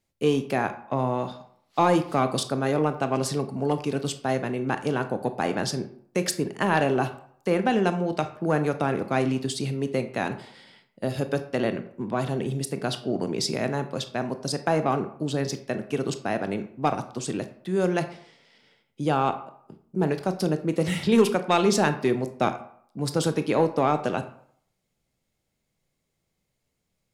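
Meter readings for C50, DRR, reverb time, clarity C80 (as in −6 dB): 12.5 dB, 9.0 dB, 0.65 s, 15.5 dB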